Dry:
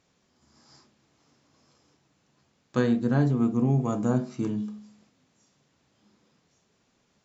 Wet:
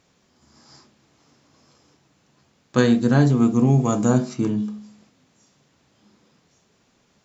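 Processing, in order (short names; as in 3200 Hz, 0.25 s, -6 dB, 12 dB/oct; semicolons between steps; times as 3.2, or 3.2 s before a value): 2.78–4.34 high shelf 3400 Hz +11 dB; gain +6.5 dB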